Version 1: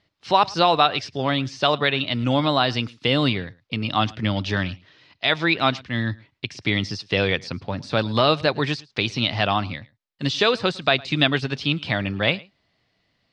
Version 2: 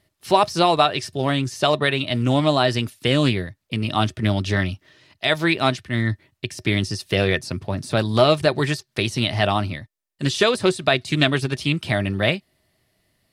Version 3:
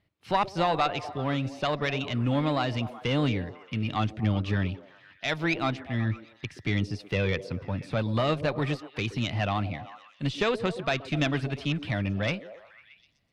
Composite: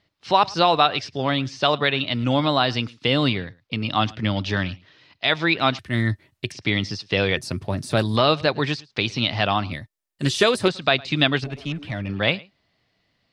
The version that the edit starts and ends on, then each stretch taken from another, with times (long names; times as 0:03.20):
1
0:05.79–0:06.52: punch in from 2
0:07.37–0:08.16: punch in from 2
0:09.72–0:10.68: punch in from 2
0:11.44–0:12.09: punch in from 3